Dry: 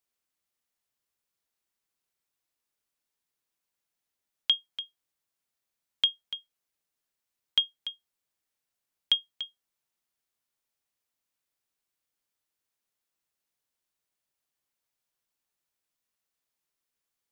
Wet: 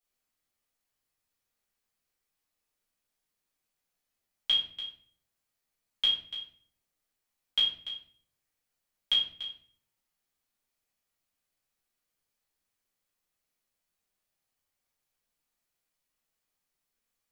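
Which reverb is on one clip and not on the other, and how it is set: shoebox room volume 63 m³, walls mixed, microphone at 1.7 m; gain -6 dB

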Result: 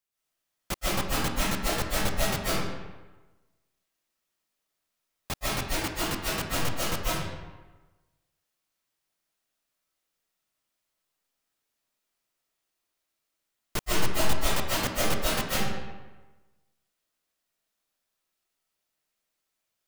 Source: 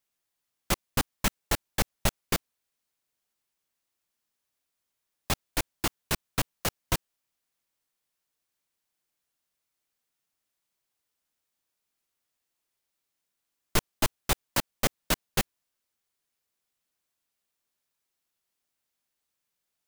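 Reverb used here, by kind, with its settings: digital reverb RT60 1.2 s, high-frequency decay 0.7×, pre-delay 0.11 s, DRR -8.5 dB; gain -6 dB

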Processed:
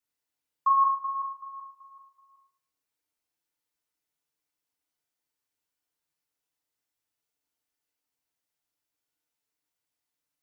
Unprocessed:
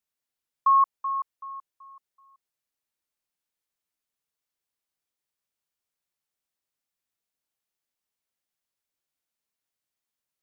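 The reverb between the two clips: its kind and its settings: FDN reverb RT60 0.58 s, low-frequency decay 0.9×, high-frequency decay 0.75×, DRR -3.5 dB; gain -4 dB

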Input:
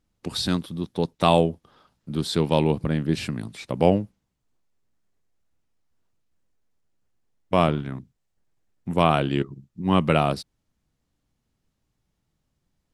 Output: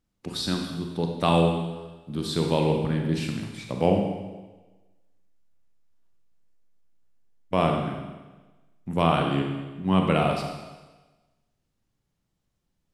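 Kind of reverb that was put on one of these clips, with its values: Schroeder reverb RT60 1.2 s, combs from 32 ms, DRR 2 dB; gain -4 dB

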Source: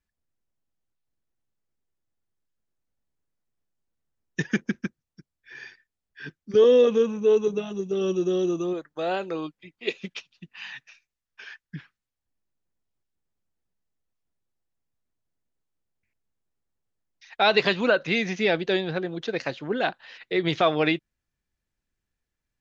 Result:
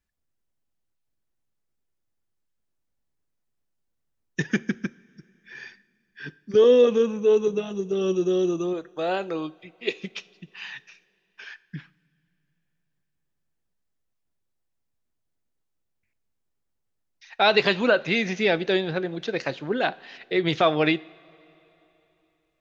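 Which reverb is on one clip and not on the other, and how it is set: two-slope reverb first 0.48 s, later 3.4 s, from -16 dB, DRR 17.5 dB; gain +1 dB

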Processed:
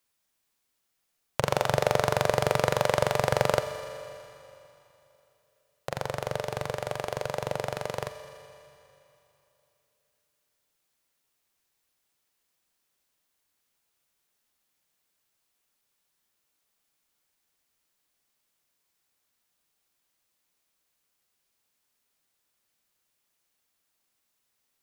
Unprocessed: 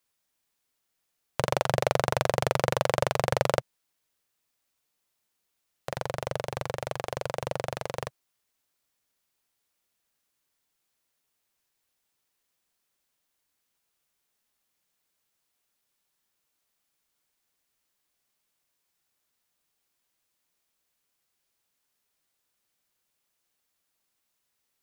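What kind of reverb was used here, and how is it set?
Schroeder reverb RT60 3 s, combs from 28 ms, DRR 9.5 dB; gain +1 dB

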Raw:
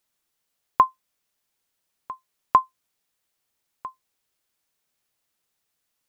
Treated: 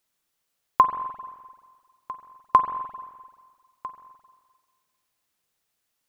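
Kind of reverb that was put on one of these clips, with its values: spring tank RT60 1.6 s, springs 43/49 ms, chirp 80 ms, DRR 8 dB

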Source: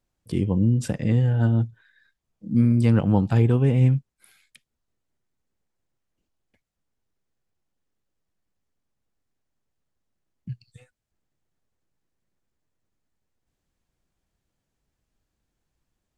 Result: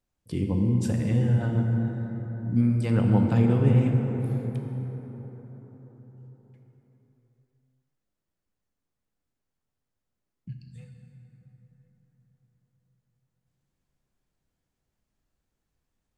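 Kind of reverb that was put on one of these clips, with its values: plate-style reverb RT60 4.8 s, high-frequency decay 0.4×, DRR 1.5 dB; gain -4.5 dB

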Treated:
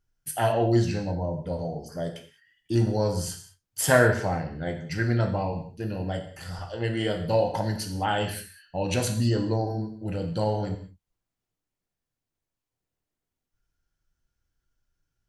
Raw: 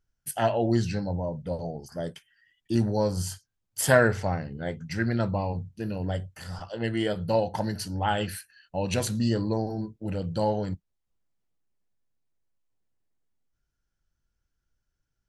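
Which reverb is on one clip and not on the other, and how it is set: non-linear reverb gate 0.23 s falling, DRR 4 dB

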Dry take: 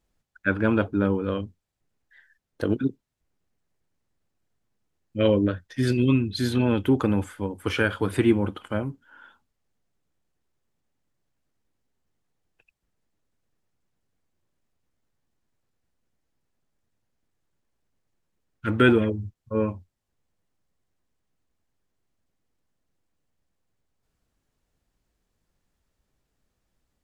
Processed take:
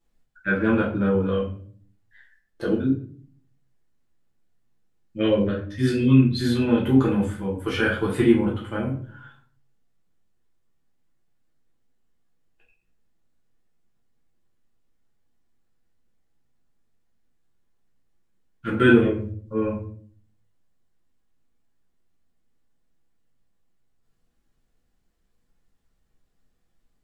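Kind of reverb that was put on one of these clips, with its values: shoebox room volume 48 m³, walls mixed, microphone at 1.2 m; gain -6 dB

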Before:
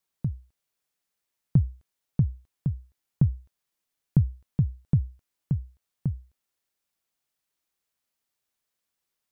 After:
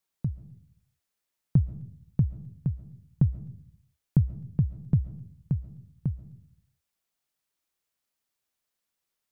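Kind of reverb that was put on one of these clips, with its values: digital reverb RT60 0.54 s, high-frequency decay 0.3×, pre-delay 95 ms, DRR 15 dB; gain -1 dB

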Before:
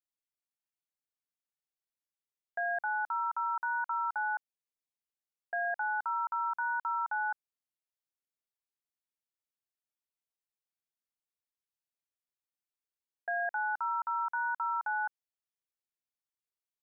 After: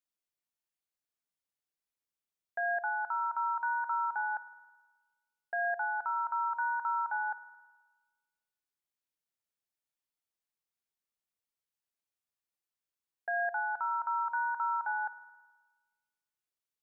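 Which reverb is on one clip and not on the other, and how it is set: spring tank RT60 1.3 s, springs 53 ms, chirp 75 ms, DRR 14 dB

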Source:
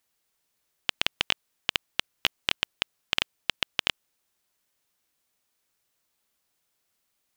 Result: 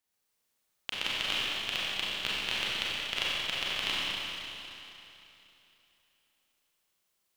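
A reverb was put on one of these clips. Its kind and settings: Schroeder reverb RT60 3.1 s, combs from 30 ms, DRR -8 dB; gain -10 dB

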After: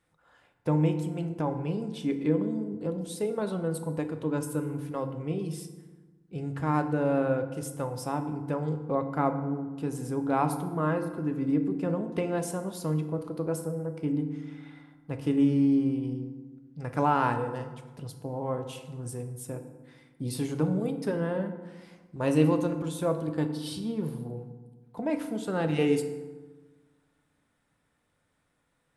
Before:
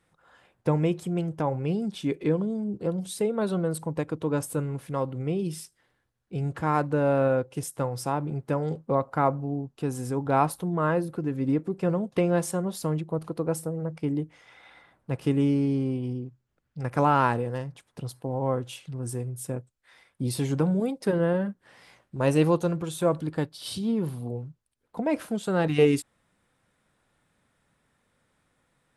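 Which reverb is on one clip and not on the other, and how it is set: FDN reverb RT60 1.3 s, low-frequency decay 1.35×, high-frequency decay 0.55×, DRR 6.5 dB; gain -4.5 dB

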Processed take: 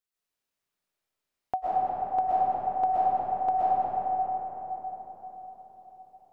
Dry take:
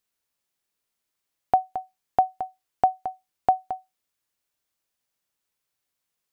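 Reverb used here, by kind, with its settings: digital reverb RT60 4.9 s, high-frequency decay 0.4×, pre-delay 85 ms, DRR -9.5 dB; gain -10.5 dB

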